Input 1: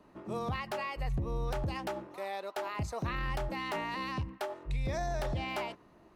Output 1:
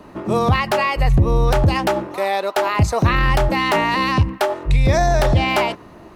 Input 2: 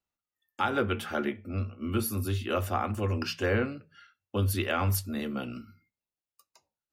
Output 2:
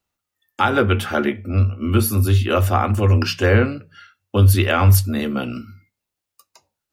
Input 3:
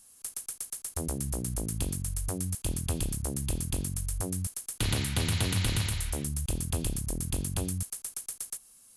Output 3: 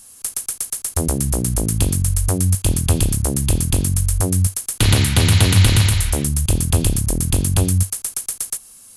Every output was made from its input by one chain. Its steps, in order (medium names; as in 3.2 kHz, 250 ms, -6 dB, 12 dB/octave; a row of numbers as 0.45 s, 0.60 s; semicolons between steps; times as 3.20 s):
peaking EQ 95 Hz +6 dB 0.25 oct; normalise loudness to -18 LUFS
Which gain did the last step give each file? +18.5 dB, +10.5 dB, +13.0 dB